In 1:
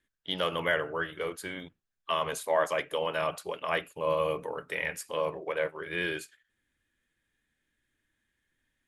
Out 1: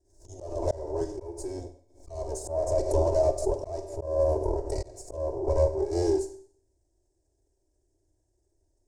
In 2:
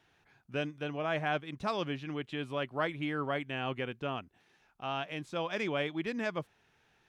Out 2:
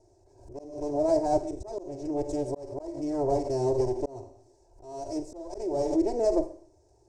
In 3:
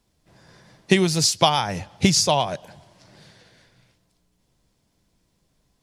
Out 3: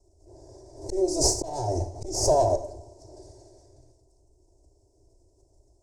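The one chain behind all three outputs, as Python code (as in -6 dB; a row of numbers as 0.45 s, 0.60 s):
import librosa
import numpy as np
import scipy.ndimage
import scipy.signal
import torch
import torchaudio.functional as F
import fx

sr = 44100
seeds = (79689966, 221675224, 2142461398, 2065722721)

y = fx.lower_of_two(x, sr, delay_ms=3.1)
y = fx.low_shelf_res(y, sr, hz=290.0, db=11.0, q=1.5)
y = fx.cheby_harmonics(y, sr, harmonics=(4,), levels_db=(-22,), full_scale_db=1.5)
y = fx.curve_eq(y, sr, hz=(110.0, 210.0, 380.0, 840.0, 1300.0, 2100.0, 3200.0, 5300.0, 8200.0, 13000.0), db=(0, -26, 15, 5, -23, -24, -29, 1, 4, -18))
y = fx.rev_schroeder(y, sr, rt60_s=0.54, comb_ms=32, drr_db=9.5)
y = fx.auto_swell(y, sr, attack_ms=403.0)
y = fx.pre_swell(y, sr, db_per_s=99.0)
y = y * 10.0 ** (-30 / 20.0) / np.sqrt(np.mean(np.square(y)))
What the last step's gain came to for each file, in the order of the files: +3.0 dB, +4.5 dB, -1.0 dB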